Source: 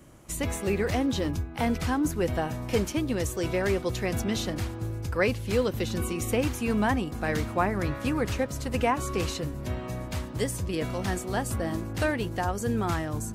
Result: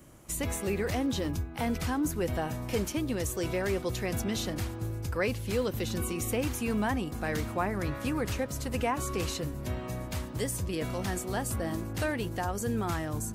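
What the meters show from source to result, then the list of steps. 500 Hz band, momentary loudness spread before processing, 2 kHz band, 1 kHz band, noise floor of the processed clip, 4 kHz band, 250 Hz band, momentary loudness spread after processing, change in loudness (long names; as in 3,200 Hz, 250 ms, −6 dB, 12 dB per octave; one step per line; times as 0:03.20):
−4.0 dB, 5 LU, −4.0 dB, −4.0 dB, −40 dBFS, −2.5 dB, −3.5 dB, 4 LU, −3.5 dB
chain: high-shelf EQ 9,400 Hz +7 dB
in parallel at −1 dB: brickwall limiter −22.5 dBFS, peak gain reduction 11.5 dB
on the sum: level −7.5 dB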